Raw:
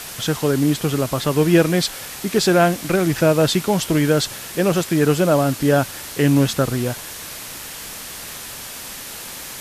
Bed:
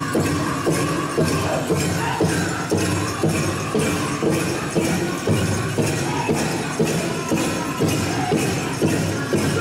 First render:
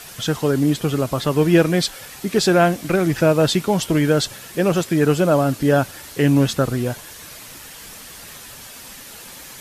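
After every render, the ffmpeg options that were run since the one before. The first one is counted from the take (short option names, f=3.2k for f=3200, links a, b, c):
-af "afftdn=nr=7:nf=-34"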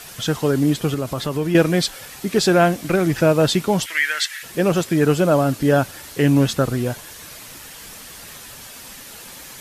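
-filter_complex "[0:a]asettb=1/sr,asplit=3[a][b][c];[a]atrim=end=0.944[d];[b]atrim=start=0.94:end=1.55,asetpts=PTS-STARTPTS,afade=t=in:d=0.004:c=qsin,afade=t=out:st=0.606:d=0.004:c=qsin,acompressor=threshold=-22dB:ratio=2:attack=3.2:release=140:knee=1:detection=peak[e];[c]atrim=start=1.546[f];[d][e]acrossfade=d=0.004:c1=hsin:c2=qsin[g];[g][f]acrossfade=d=0.004:c1=qsin:c2=hsin,asplit=3[h][i][j];[h]afade=t=out:st=3.85:d=0.02[k];[i]highpass=f=1.9k:t=q:w=5.7,afade=t=in:st=3.85:d=0.02,afade=t=out:st=4.42:d=0.02[l];[j]afade=t=in:st=4.42:d=0.02[m];[k][l][m]amix=inputs=3:normalize=0"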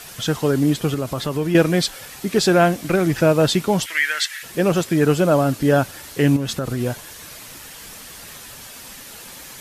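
-filter_complex "[0:a]asettb=1/sr,asplit=3[a][b][c];[a]atrim=end=6.364[d];[b]atrim=start=6.36:end=6.81,asetpts=PTS-STARTPTS,afade=t=in:d=0.004:c=qsin,afade=t=out:st=0.446:d=0.004:c=qsin,acompressor=threshold=-19dB:ratio=12:attack=3.2:release=140:knee=1:detection=peak[e];[c]atrim=start=6.806[f];[d][e]acrossfade=d=0.004:c1=hsin:c2=qsin[g];[g][f]acrossfade=d=0.004:c1=qsin:c2=hsin"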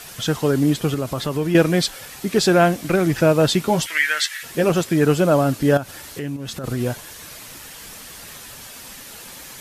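-filter_complex "[0:a]asettb=1/sr,asplit=3[a][b][c];[a]atrim=end=3.644[d];[b]atrim=start=3.64:end=4.7,asetpts=PTS-STARTPTS,afade=t=in:d=0.004:c=qsin,afade=t=out:st=1.056:d=0.004:c=qsin,asplit=2[e][f];[f]adelay=13,volume=-6.5dB[g];[e][g]amix=inputs=2:normalize=0,atrim=end_sample=46746[h];[c]atrim=start=4.696[i];[d][h]acrossfade=d=0.004:c1=hsin:c2=qsin[j];[j][i]acrossfade=d=0.004:c1=qsin:c2=hsin,asettb=1/sr,asplit=3[k][l][m];[k]atrim=end=5.774[n];[l]atrim=start=5.77:end=6.64,asetpts=PTS-STARTPTS,afade=t=in:d=0.004:c=qsin,afade=t=out:st=0.866:d=0.004:c=qsin,acompressor=threshold=-28dB:ratio=3:attack=3.2:release=140:knee=1:detection=peak[o];[m]atrim=start=6.636[p];[n][o]acrossfade=d=0.004:c1=hsin:c2=qsin[q];[q][p]acrossfade=d=0.004:c1=qsin:c2=hsin"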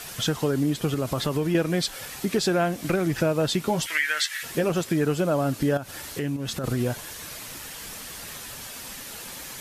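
-af "acompressor=threshold=-22dB:ratio=3"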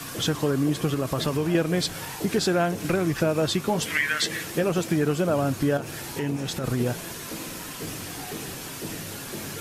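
-filter_complex "[1:a]volume=-17dB[a];[0:a][a]amix=inputs=2:normalize=0"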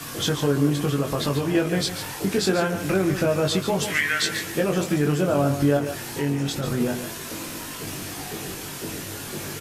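-filter_complex "[0:a]asplit=2[a][b];[b]adelay=21,volume=-4dB[c];[a][c]amix=inputs=2:normalize=0,asplit=2[d][e];[e]aecho=0:1:143:0.335[f];[d][f]amix=inputs=2:normalize=0"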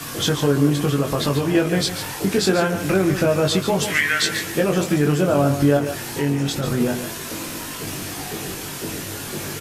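-af "volume=3.5dB"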